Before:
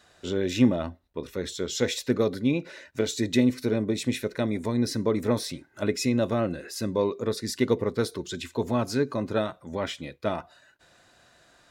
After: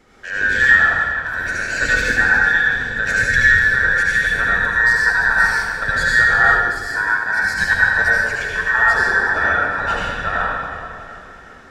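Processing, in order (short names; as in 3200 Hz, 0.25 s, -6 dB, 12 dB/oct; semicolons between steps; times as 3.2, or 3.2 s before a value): band inversion scrambler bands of 2000 Hz; tilt -2.5 dB/oct; thinning echo 0.37 s, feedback 66%, level -17 dB; reverb RT60 2.2 s, pre-delay 68 ms, DRR -6 dB; 6.43–7.58 three-band expander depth 100%; gain +4.5 dB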